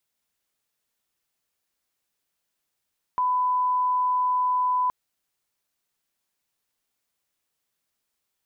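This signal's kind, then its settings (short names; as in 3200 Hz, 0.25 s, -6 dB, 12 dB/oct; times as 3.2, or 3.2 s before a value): line-up tone -20 dBFS 1.72 s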